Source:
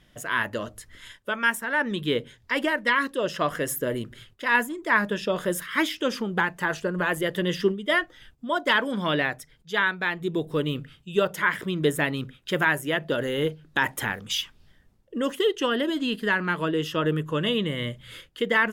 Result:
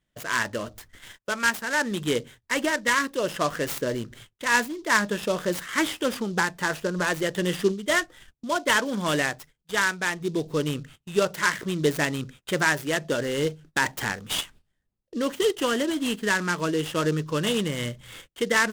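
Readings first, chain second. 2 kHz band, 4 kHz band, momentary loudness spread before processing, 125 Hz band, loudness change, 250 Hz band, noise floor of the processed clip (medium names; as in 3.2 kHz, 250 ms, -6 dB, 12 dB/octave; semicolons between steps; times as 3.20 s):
-0.5 dB, 0.0 dB, 9 LU, 0.0 dB, 0.0 dB, 0.0 dB, -77 dBFS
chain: gate -47 dBFS, range -19 dB; delay time shaken by noise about 4.5 kHz, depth 0.032 ms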